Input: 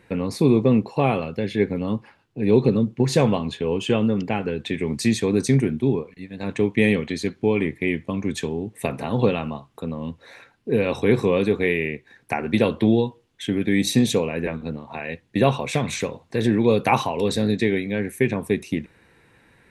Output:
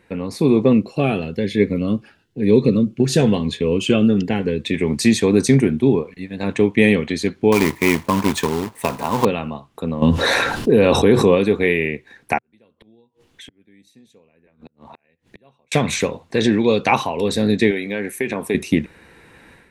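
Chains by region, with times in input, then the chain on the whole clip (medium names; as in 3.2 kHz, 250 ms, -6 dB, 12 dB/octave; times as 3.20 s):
0.73–4.74 s: peaking EQ 860 Hz -8 dB 0.62 oct + Shepard-style phaser rising 1 Hz
7.52–9.25 s: companded quantiser 4-bit + peaking EQ 980 Hz +14 dB 0.37 oct
10.02–11.35 s: peaking EQ 2.2 kHz -6.5 dB 0.48 oct + level flattener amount 70%
12.38–15.72 s: inverted gate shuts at -20 dBFS, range -42 dB + compression 5:1, threshold -50 dBFS
16.36–16.96 s: low-pass 6.8 kHz 24 dB/octave + treble shelf 3.6 kHz +10.5 dB
17.71–18.55 s: high-pass 350 Hz 6 dB/octave + compression 2.5:1, threshold -25 dBFS
whole clip: peaking EQ 120 Hz -7 dB 0.33 oct; level rider; trim -1 dB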